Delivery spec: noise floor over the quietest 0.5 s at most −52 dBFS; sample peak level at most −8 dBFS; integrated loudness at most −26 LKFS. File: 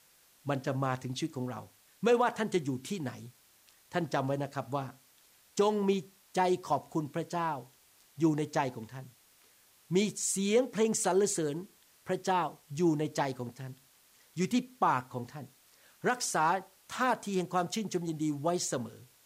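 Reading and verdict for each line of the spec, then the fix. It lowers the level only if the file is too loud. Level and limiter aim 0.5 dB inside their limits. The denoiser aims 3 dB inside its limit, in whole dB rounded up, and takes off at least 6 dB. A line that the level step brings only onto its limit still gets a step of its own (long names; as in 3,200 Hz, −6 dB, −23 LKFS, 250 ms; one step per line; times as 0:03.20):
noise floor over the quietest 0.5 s −64 dBFS: in spec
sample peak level −16.5 dBFS: in spec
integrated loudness −32.0 LKFS: in spec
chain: no processing needed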